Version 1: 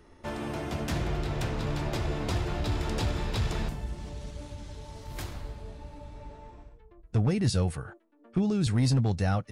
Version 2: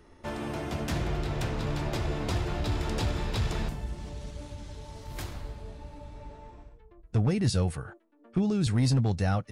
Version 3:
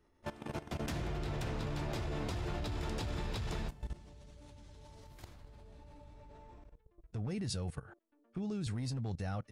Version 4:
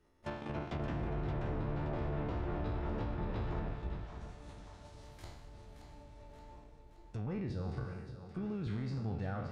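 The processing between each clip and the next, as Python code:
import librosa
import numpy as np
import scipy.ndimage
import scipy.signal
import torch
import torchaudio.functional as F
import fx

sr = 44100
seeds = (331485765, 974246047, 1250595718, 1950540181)

y1 = x
y2 = fx.level_steps(y1, sr, step_db=17)
y2 = y2 * 10.0 ** (-3.0 / 20.0)
y3 = fx.spec_trails(y2, sr, decay_s=0.76)
y3 = fx.env_lowpass_down(y3, sr, base_hz=1300.0, full_db=-31.0)
y3 = fx.echo_split(y3, sr, split_hz=580.0, low_ms=312, high_ms=574, feedback_pct=52, wet_db=-8.5)
y3 = y3 * 10.0 ** (-1.5 / 20.0)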